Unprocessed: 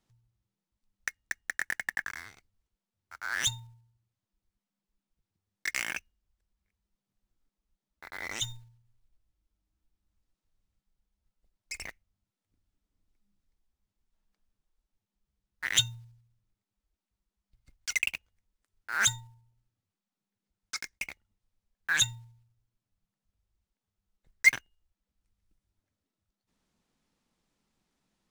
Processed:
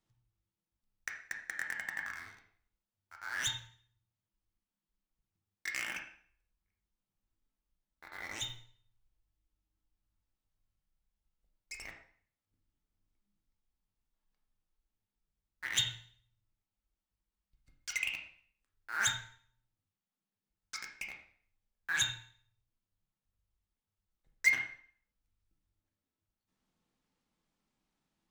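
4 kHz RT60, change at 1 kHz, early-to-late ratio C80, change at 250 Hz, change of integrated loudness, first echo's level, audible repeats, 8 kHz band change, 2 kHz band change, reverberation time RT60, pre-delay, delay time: 0.50 s, −4.0 dB, 10.0 dB, −4.5 dB, −5.5 dB, no echo audible, no echo audible, −7.0 dB, −5.0 dB, 0.50 s, 5 ms, no echo audible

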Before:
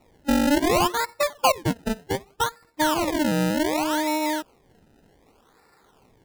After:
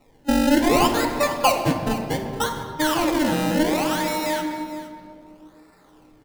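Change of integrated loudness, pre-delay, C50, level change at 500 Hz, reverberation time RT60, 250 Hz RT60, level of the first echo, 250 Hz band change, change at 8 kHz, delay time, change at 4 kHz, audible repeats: +2.0 dB, 4 ms, 5.5 dB, +2.0 dB, 2.4 s, 3.2 s, −15.5 dB, +2.5 dB, +1.5 dB, 463 ms, +2.0 dB, 1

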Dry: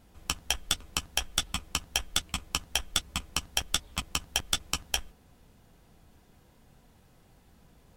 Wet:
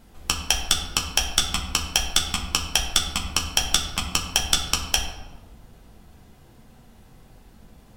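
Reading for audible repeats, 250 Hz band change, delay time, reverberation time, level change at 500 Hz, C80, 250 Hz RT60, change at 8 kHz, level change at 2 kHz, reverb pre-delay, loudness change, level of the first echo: no echo audible, +8.0 dB, no echo audible, 1.3 s, +7.5 dB, 9.0 dB, 1.9 s, +8.5 dB, +7.0 dB, 3 ms, +8.5 dB, no echo audible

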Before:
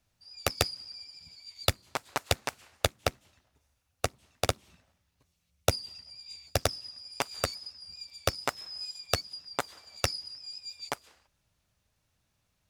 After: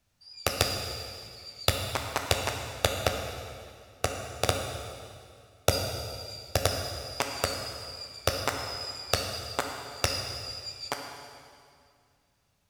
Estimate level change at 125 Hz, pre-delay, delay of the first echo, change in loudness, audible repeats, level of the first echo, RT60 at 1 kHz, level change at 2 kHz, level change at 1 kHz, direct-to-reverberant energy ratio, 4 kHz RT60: +3.0 dB, 11 ms, no echo audible, +2.5 dB, no echo audible, no echo audible, 2.2 s, +3.0 dB, +2.5 dB, 2.5 dB, 2.1 s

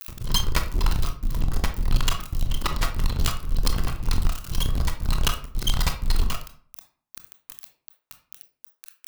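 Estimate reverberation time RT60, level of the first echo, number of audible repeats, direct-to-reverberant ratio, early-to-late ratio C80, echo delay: 0.50 s, no echo audible, no echo audible, 5.5 dB, 15.0 dB, no echo audible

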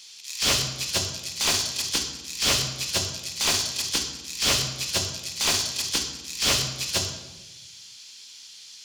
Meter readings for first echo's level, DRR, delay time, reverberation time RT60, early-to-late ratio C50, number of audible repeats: no echo audible, 4.0 dB, no echo audible, 1.1 s, 7.5 dB, no echo audible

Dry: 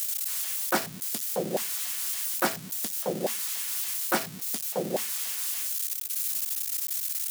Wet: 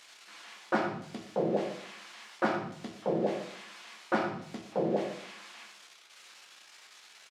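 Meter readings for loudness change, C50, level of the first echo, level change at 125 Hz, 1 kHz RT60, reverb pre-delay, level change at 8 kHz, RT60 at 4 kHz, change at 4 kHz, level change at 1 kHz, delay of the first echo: −5.5 dB, 5.5 dB, −13.0 dB, +1.0 dB, 0.60 s, 7 ms, −25.0 dB, 0.45 s, −11.0 dB, −0.5 dB, 119 ms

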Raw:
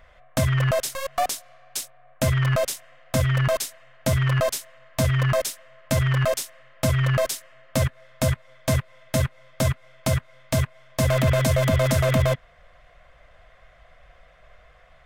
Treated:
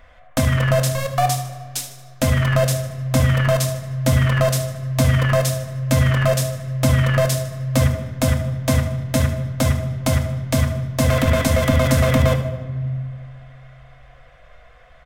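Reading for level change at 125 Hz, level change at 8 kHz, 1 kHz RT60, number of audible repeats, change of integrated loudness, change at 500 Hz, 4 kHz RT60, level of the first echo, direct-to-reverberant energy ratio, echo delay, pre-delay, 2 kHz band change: +5.5 dB, +3.5 dB, 1.5 s, 2, +4.5 dB, +3.5 dB, 1.1 s, −12.0 dB, 4.5 dB, 76 ms, 3 ms, +4.0 dB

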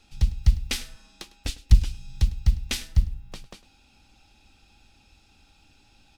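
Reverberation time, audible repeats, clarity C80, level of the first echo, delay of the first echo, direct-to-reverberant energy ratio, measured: no reverb audible, 1, no reverb audible, −19.5 dB, 103 ms, no reverb audible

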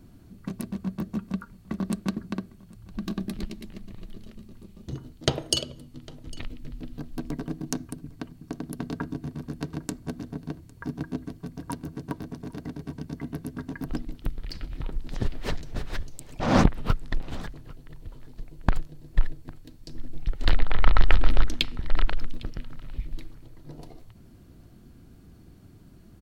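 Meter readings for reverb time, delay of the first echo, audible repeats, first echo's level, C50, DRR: no reverb audible, 804 ms, 1, −22.5 dB, no reverb audible, no reverb audible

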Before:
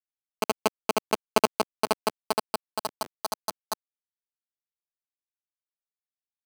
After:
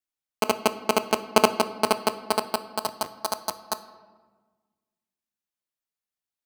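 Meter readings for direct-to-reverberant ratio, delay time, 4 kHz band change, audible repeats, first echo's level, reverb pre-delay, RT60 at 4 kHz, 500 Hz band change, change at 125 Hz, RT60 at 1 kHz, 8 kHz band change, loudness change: 10.5 dB, no echo audible, +3.5 dB, no echo audible, no echo audible, 3 ms, 0.85 s, +3.0 dB, +3.5 dB, 1.3 s, +3.0 dB, +3.5 dB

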